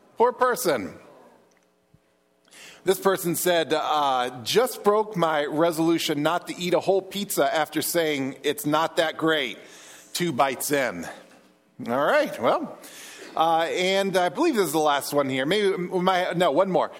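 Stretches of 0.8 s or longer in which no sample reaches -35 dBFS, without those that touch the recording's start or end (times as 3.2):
0.96–2.53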